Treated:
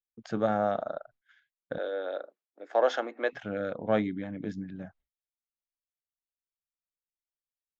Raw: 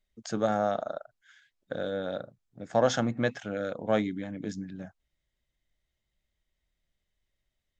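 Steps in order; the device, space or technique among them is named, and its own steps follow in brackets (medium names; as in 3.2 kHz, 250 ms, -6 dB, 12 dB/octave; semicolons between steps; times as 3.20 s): hearing-loss simulation (low-pass 3.1 kHz 12 dB/octave; expander -54 dBFS); 1.78–3.33 s: steep high-pass 330 Hz 36 dB/octave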